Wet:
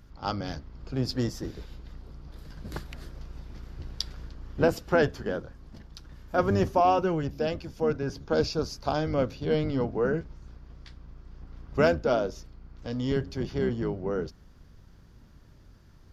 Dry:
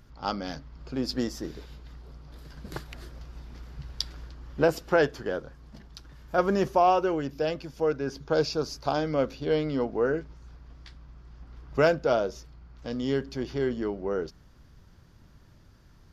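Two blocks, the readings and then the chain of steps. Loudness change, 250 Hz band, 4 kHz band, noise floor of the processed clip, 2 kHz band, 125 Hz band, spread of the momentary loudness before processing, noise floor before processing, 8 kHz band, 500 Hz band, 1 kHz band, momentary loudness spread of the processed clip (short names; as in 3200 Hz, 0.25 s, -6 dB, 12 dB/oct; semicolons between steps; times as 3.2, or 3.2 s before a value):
-0.5 dB, +0.5 dB, -1.0 dB, -54 dBFS, -1.0 dB, +4.5 dB, 21 LU, -55 dBFS, -1.0 dB, -1.0 dB, -1.0 dB, 22 LU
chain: octaver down 1 oct, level 0 dB; gain -1 dB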